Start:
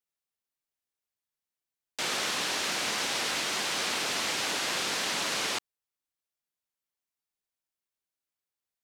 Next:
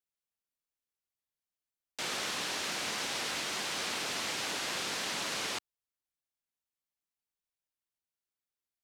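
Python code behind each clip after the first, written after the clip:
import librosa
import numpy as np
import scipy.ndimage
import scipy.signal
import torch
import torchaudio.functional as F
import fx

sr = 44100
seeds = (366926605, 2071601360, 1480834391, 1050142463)

y = fx.low_shelf(x, sr, hz=130.0, db=5.0)
y = F.gain(torch.from_numpy(y), -5.0).numpy()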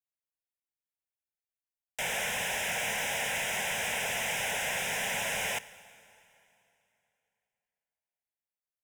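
y = fx.leveller(x, sr, passes=3)
y = fx.fixed_phaser(y, sr, hz=1200.0, stages=6)
y = fx.rev_plate(y, sr, seeds[0], rt60_s=3.0, hf_ratio=0.9, predelay_ms=0, drr_db=16.5)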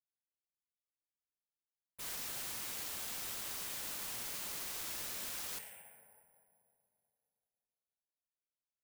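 y = 10.0 ** (-37.0 / 20.0) * (np.abs((x / 10.0 ** (-37.0 / 20.0) + 3.0) % 4.0 - 2.0) - 1.0)
y = fx.env_lowpass(y, sr, base_hz=720.0, full_db=-40.0)
y = (np.kron(y[::4], np.eye(4)[0]) * 4)[:len(y)]
y = F.gain(torch.from_numpy(y), -6.0).numpy()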